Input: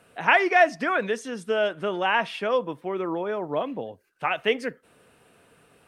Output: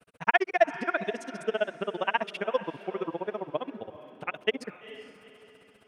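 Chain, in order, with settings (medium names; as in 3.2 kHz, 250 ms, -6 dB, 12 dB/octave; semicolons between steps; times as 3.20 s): granulator 45 ms, grains 15 per s, spray 18 ms, pitch spread up and down by 0 st; echo that smears into a reverb 450 ms, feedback 40%, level -14.5 dB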